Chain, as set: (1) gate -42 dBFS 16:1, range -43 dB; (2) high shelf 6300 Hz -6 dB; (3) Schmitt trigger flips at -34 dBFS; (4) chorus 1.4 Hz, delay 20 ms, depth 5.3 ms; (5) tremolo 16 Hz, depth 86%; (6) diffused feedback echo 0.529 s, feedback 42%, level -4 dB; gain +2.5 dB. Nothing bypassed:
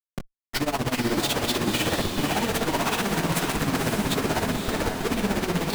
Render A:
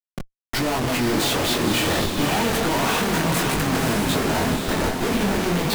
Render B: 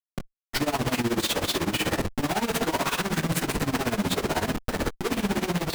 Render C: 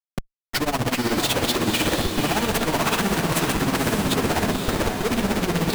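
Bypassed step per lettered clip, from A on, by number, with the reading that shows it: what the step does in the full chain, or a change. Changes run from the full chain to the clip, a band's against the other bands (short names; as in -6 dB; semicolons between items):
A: 5, loudness change +4.0 LU; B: 6, echo-to-direct -3.0 dB to none; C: 4, loudness change +3.0 LU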